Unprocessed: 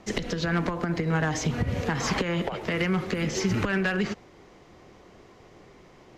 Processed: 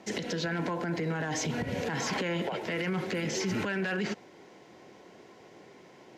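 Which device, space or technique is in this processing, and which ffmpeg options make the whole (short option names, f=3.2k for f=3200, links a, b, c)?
PA system with an anti-feedback notch: -af "highpass=180,asuperstop=centerf=1200:order=4:qfactor=7.1,alimiter=limit=-23.5dB:level=0:latency=1:release=11"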